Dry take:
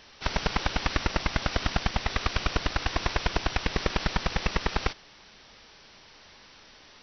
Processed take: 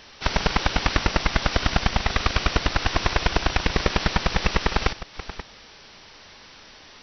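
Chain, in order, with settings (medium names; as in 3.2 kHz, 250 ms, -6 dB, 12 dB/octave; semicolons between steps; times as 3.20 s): chunks repeated in reverse 387 ms, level -13 dB; trim +5.5 dB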